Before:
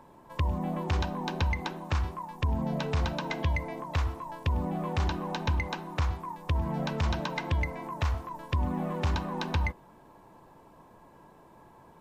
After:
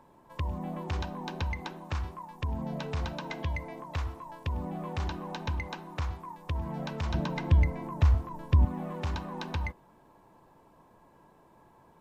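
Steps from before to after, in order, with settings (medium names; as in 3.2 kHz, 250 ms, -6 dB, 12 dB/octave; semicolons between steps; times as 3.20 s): 7.14–8.65 s: bass shelf 360 Hz +12 dB; trim -4.5 dB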